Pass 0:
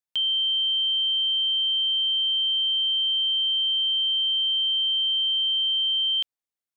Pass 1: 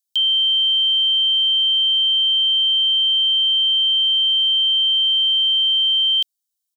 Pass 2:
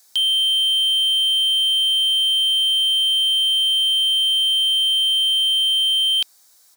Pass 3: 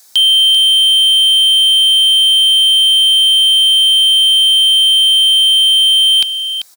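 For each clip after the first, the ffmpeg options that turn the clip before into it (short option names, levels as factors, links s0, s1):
-af "aexciter=amount=8.5:drive=2.7:freq=3100,aecho=1:1:1.3:0.42,volume=0.422"
-filter_complex "[0:a]equalizer=f=3000:w=2.9:g=-11.5,asplit=2[s0][s1];[s1]highpass=f=720:p=1,volume=50.1,asoftclip=type=tanh:threshold=0.106[s2];[s0][s2]amix=inputs=2:normalize=0,lowpass=f=2900:p=1,volume=0.501,volume=2.66"
-af "aecho=1:1:390:0.316,volume=2.82"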